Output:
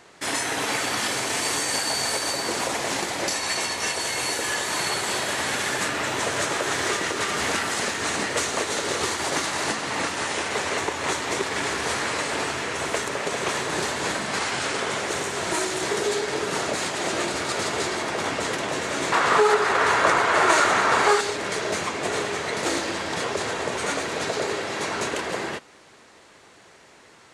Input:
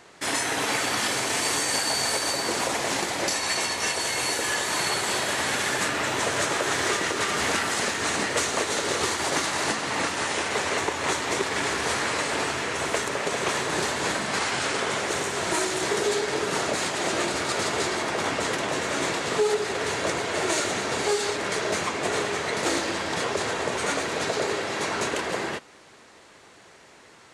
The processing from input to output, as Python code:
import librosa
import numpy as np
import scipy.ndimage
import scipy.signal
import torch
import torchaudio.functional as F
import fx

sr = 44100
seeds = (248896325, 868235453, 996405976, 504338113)

y = fx.peak_eq(x, sr, hz=1200.0, db=14.0, octaves=1.6, at=(19.12, 21.21))